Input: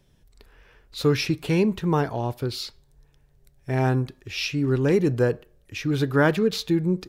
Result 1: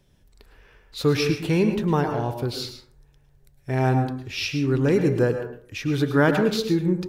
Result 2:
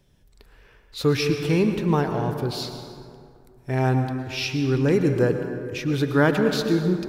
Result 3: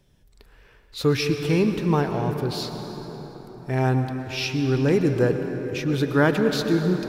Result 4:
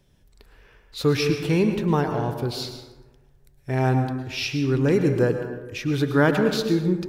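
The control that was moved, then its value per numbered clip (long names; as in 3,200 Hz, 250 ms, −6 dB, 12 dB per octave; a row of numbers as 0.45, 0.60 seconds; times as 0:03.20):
dense smooth reverb, RT60: 0.53, 2.4, 5.2, 1.2 seconds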